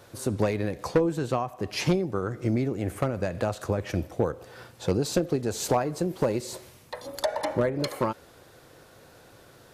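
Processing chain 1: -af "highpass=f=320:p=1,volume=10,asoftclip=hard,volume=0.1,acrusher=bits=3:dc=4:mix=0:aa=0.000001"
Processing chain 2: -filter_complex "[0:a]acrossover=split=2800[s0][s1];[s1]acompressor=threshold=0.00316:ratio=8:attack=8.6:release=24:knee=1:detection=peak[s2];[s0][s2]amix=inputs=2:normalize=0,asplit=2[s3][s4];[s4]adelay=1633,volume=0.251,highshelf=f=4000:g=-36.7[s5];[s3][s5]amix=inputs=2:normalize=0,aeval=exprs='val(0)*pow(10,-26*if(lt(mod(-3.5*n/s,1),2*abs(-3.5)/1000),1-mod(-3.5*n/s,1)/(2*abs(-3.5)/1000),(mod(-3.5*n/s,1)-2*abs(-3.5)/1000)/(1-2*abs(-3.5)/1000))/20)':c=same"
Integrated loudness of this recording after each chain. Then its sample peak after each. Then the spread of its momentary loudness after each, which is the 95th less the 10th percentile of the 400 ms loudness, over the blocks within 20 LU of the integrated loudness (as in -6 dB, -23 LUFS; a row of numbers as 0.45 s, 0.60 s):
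-35.0 LUFS, -36.5 LUFS; -19.5 dBFS, -14.5 dBFS; 8 LU, 16 LU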